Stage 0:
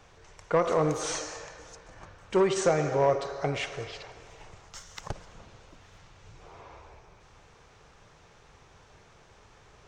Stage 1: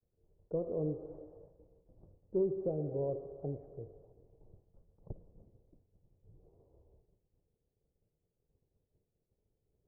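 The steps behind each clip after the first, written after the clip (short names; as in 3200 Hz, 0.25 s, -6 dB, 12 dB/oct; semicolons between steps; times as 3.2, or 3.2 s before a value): inverse Chebyshev low-pass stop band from 2900 Hz, stop band 80 dB; expander -48 dBFS; gain -7 dB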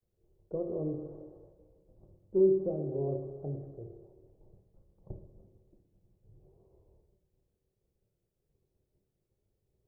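reverb RT60 0.75 s, pre-delay 3 ms, DRR 5.5 dB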